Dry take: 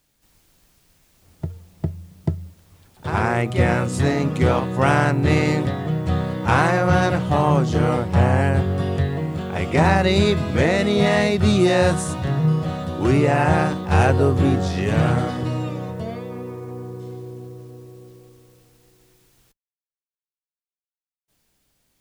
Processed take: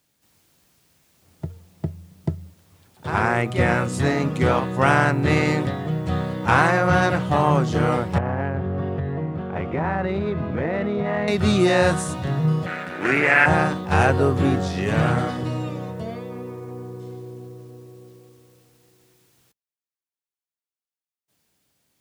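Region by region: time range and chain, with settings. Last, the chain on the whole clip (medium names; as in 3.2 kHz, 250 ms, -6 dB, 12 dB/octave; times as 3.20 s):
8.18–11.28 s: dead-time distortion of 0.066 ms + low-pass 1.7 kHz + compression, threshold -18 dBFS
12.66–13.46 s: partial rectifier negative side -12 dB + high-pass 190 Hz + high-order bell 1.9 kHz +13.5 dB 1.1 oct
whole clip: dynamic bell 1.5 kHz, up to +4 dB, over -31 dBFS, Q 0.91; high-pass 88 Hz; trim -1.5 dB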